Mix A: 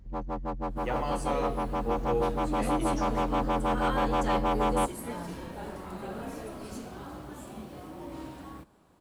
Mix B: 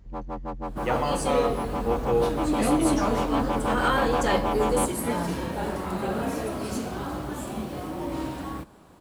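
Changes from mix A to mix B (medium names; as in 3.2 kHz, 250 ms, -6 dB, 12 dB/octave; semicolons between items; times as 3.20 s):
speech +6.0 dB; second sound +10.0 dB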